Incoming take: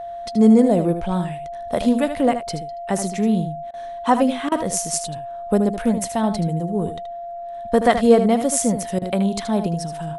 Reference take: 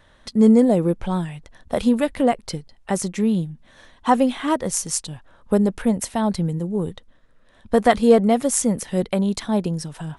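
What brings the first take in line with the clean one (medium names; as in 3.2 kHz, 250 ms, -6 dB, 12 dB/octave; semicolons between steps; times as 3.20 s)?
band-stop 690 Hz, Q 30; interpolate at 3.71/4.49/8.99 s, 26 ms; inverse comb 77 ms -9.5 dB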